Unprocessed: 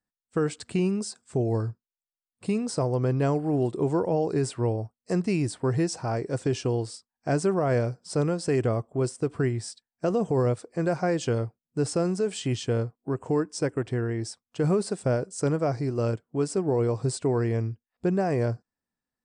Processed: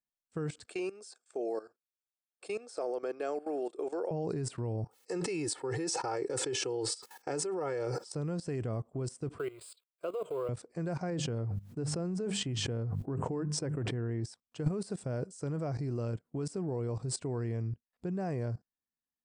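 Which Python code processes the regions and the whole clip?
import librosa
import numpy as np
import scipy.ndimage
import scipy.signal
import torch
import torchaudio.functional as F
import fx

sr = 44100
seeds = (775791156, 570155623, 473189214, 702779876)

y = fx.chain(x, sr, fx.highpass(hz=390.0, slope=24),
    fx.notch_comb(f0_hz=990.0), at=(0.66, 4.11))
y = fx.chain(y, sr, fx.highpass(hz=310.0, slope=12),
    fx.comb(ms=2.3, depth=0.81),
    fx.sustainer(db_per_s=62.0), at=(4.84, 8.14))
y = fx.chain(y, sr, fx.law_mismatch(coded='mu'),
    fx.highpass(hz=410.0, slope=12),
    fx.fixed_phaser(hz=1200.0, stages=8), at=(9.38, 10.49))
y = fx.chain(y, sr, fx.high_shelf(hz=2400.0, db=-8.0),
    fx.hum_notches(base_hz=50, count=4),
    fx.sustainer(db_per_s=55.0), at=(11.1, 14.25))
y = fx.dynamic_eq(y, sr, hz=150.0, q=1.0, threshold_db=-38.0, ratio=4.0, max_db=6)
y = fx.level_steps(y, sr, step_db=17)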